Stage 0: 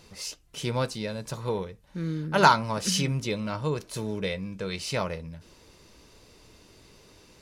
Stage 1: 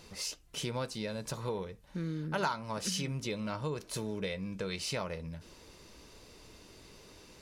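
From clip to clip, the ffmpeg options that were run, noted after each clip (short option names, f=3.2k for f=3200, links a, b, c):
-af "acompressor=threshold=-34dB:ratio=3,equalizer=f=110:w=1.5:g=-2.5"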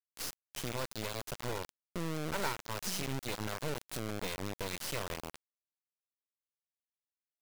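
-af "acrusher=bits=3:dc=4:mix=0:aa=0.000001"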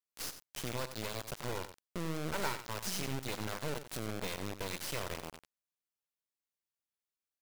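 -af "aecho=1:1:92:0.266,volume=-1dB"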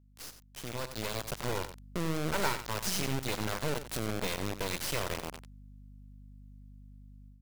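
-af "aeval=exprs='val(0)+0.00178*(sin(2*PI*50*n/s)+sin(2*PI*2*50*n/s)/2+sin(2*PI*3*50*n/s)/3+sin(2*PI*4*50*n/s)/4+sin(2*PI*5*50*n/s)/5)':c=same,dynaudnorm=f=560:g=3:m=10.5dB,volume=-5.5dB"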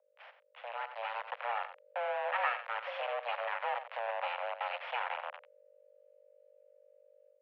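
-af "highpass=f=180:t=q:w=0.5412,highpass=f=180:t=q:w=1.307,lowpass=f=2.5k:t=q:w=0.5176,lowpass=f=2.5k:t=q:w=0.7071,lowpass=f=2.5k:t=q:w=1.932,afreqshift=350"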